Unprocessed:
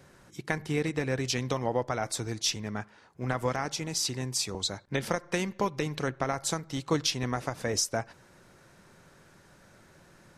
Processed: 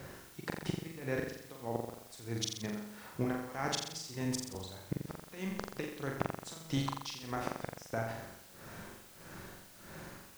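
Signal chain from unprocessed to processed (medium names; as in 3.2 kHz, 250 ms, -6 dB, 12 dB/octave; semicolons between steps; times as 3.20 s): treble shelf 5.8 kHz -9 dB; compression 8:1, threshold -34 dBFS, peak gain reduction 12.5 dB; tremolo 1.6 Hz, depth 94%; inverted gate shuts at -29 dBFS, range -32 dB; added noise white -68 dBFS; flutter echo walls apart 7.4 m, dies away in 0.74 s; trim +7.5 dB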